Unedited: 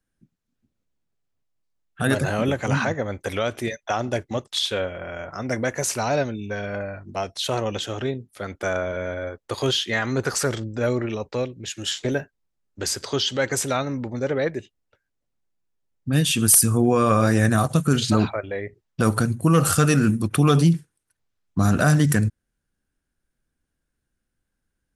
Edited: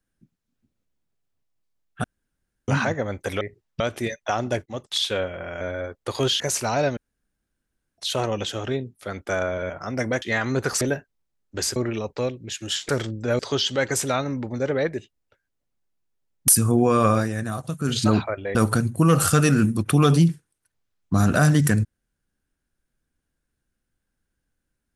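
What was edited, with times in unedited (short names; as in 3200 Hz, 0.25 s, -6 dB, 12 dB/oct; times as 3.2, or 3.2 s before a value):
2.04–2.68 room tone
4.27–4.58 fade in equal-power, from -17 dB
5.22–5.74 swap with 9.04–9.83
6.31–7.32 room tone
10.42–10.92 swap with 12.05–13
16.09–16.54 cut
17.17–18.05 dip -9.5 dB, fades 0.19 s
18.61–19 move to 3.41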